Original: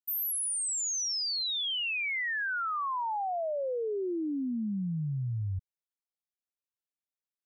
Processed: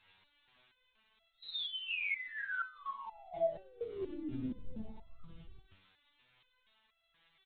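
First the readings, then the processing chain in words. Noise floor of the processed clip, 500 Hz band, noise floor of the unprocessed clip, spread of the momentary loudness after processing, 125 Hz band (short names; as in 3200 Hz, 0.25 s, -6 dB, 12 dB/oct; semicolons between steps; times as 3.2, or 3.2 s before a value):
-77 dBFS, -6.5 dB, under -85 dBFS, 16 LU, -18.5 dB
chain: bell 160 Hz +8.5 dB 1.3 oct; comb 2 ms, depth 76%; negative-ratio compressor -32 dBFS, ratio -0.5; limiter -30 dBFS, peak gain reduction 5.5 dB; crossover distortion -59 dBFS; flange 1.4 Hz, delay 4.9 ms, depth 1.9 ms, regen +86%; added noise blue -58 dBFS; painted sound rise, 3.98–5.24, 210–1300 Hz -58 dBFS; feedback echo 68 ms, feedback 36%, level -11 dB; LPC vocoder at 8 kHz whisper; stepped resonator 4.2 Hz 95–670 Hz; gain +13 dB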